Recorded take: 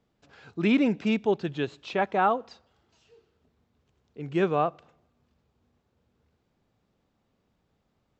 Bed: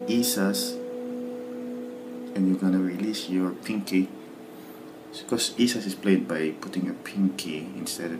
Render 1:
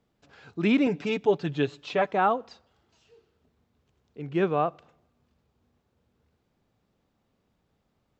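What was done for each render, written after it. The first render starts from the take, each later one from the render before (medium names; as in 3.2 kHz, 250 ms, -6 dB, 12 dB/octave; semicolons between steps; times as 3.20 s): 0.86–2.12 s: comb 6.9 ms, depth 64%; 4.22–4.68 s: distance through air 94 m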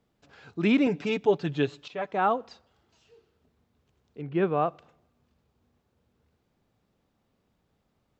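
1.88–2.33 s: fade in, from -15.5 dB; 4.21–4.62 s: distance through air 220 m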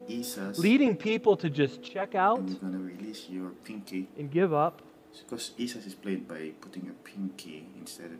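add bed -12 dB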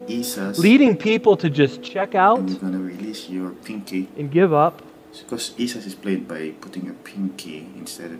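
trim +10 dB; peak limiter -3 dBFS, peak gain reduction 2.5 dB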